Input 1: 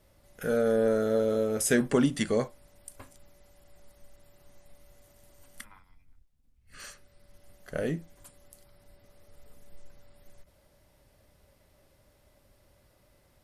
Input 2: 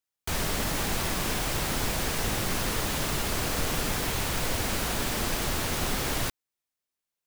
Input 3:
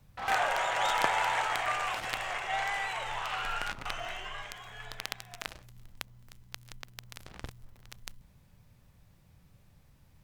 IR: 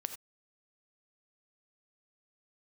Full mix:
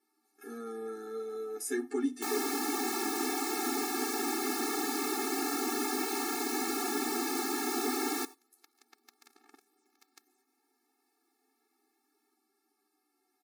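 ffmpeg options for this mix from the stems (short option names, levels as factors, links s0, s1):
-filter_complex "[0:a]bandreject=f=50:t=h:w=6,bandreject=f=100:t=h:w=6,bandreject=f=150:t=h:w=6,bandreject=f=200:t=h:w=6,bandreject=f=250:t=h:w=6,asplit=2[s0][s1];[s1]adelay=9.7,afreqshift=-0.33[s2];[s0][s2]amix=inputs=2:normalize=1,volume=0.631,asplit=3[s3][s4][s5];[s4]volume=0.168[s6];[1:a]lowshelf=f=480:g=6,adelay=1950,volume=0.708,asplit=2[s7][s8];[s8]volume=0.447[s9];[2:a]acompressor=threshold=0.0158:ratio=6,adelay=2100,volume=0.447[s10];[s5]apad=whole_len=544039[s11];[s10][s11]sidechaincompress=threshold=0.00282:ratio=8:attack=16:release=839[s12];[3:a]atrim=start_sample=2205[s13];[s6][s9]amix=inputs=2:normalize=0[s14];[s14][s13]afir=irnorm=-1:irlink=0[s15];[s3][s7][s12][s15]amix=inputs=4:normalize=0,equalizer=f=3000:t=o:w=0.38:g=-12.5,afftfilt=real='re*eq(mod(floor(b*sr/1024/230),2),1)':imag='im*eq(mod(floor(b*sr/1024/230),2),1)':win_size=1024:overlap=0.75"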